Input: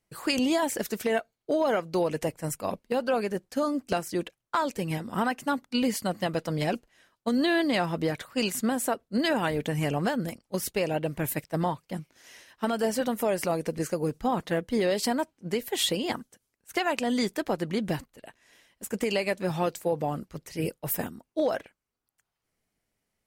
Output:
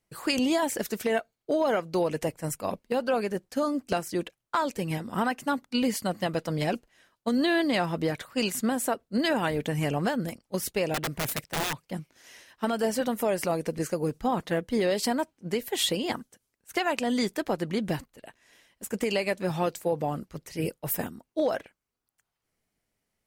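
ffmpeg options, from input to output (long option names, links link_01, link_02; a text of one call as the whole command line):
ffmpeg -i in.wav -filter_complex "[0:a]asettb=1/sr,asplit=3[link_01][link_02][link_03];[link_01]atrim=end=10.944[link_04];[link_02]atrim=start=10.94:end=11.87,asetpts=PTS-STARTPTS,afade=type=in:duration=0.004:curve=qsin,afade=type=out:start_time=0.926:duration=0.004:curve=qsin,aeval=exprs='(mod(15*val(0)+1,2)-1)/15':channel_layout=same[link_05];[link_03]atrim=start=11.866[link_06];[link_04][link_05]acrossfade=duration=0.004:curve1=hsin:curve2=qsin[link_07];[link_07][link_06]acrossfade=duration=0.004:curve1=qsin:curve2=hsin" out.wav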